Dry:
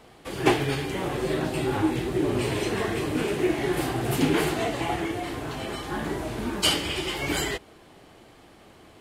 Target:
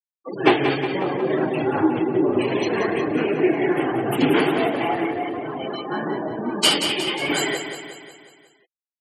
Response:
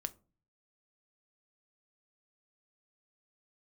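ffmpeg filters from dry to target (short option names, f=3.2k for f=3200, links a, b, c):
-af "highpass=200,afftfilt=real='re*gte(hypot(re,im),0.0355)':imag='im*gte(hypot(re,im),0.0355)':win_size=1024:overlap=0.75,aecho=1:1:181|362|543|724|905|1086:0.398|0.215|0.116|0.0627|0.0339|0.0183,volume=5.5dB"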